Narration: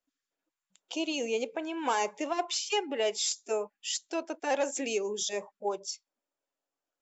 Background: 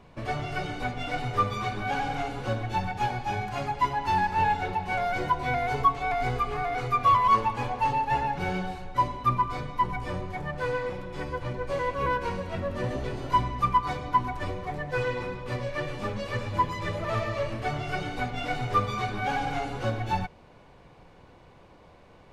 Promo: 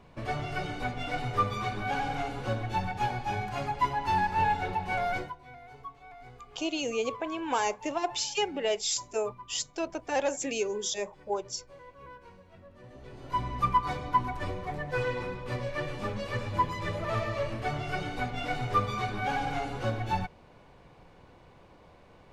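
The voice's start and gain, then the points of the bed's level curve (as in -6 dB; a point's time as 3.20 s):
5.65 s, +0.5 dB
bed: 5.16 s -2 dB
5.38 s -21.5 dB
12.83 s -21.5 dB
13.55 s -2 dB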